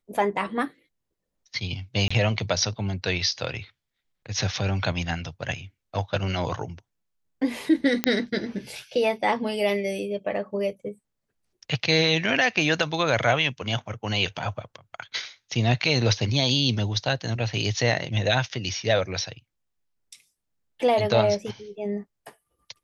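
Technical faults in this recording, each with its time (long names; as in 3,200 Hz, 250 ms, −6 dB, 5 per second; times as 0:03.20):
0:02.08–0:02.10: drop-out 25 ms
0:08.04: click −5 dBFS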